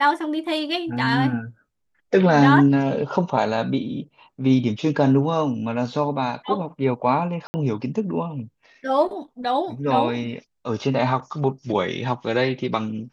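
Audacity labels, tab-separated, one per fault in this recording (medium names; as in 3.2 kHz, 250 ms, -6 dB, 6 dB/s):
7.470000	7.540000	dropout 70 ms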